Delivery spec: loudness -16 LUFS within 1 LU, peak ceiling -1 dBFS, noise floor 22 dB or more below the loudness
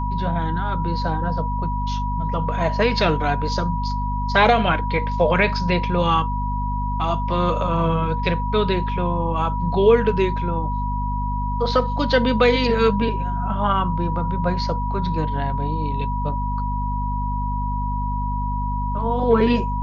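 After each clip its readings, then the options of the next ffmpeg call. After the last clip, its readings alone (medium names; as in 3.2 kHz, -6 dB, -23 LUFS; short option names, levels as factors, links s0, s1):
hum 50 Hz; highest harmonic 250 Hz; hum level -22 dBFS; steady tone 970 Hz; tone level -26 dBFS; loudness -21.5 LUFS; peak level -3.5 dBFS; loudness target -16.0 LUFS
-> -af "bandreject=f=50:t=h:w=4,bandreject=f=100:t=h:w=4,bandreject=f=150:t=h:w=4,bandreject=f=200:t=h:w=4,bandreject=f=250:t=h:w=4"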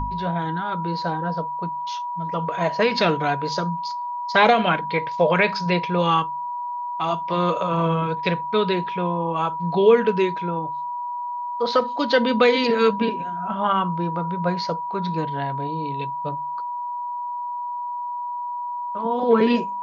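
hum not found; steady tone 970 Hz; tone level -26 dBFS
-> -af "bandreject=f=970:w=30"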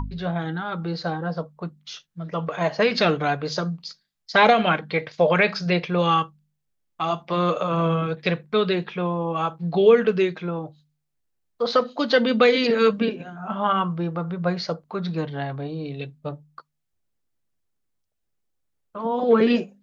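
steady tone not found; loudness -22.5 LUFS; peak level -5.0 dBFS; loudness target -16.0 LUFS
-> -af "volume=2.11,alimiter=limit=0.891:level=0:latency=1"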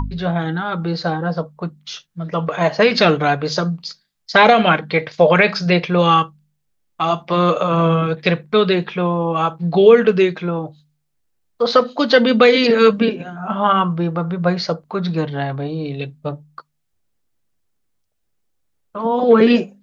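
loudness -16.5 LUFS; peak level -1.0 dBFS; noise floor -70 dBFS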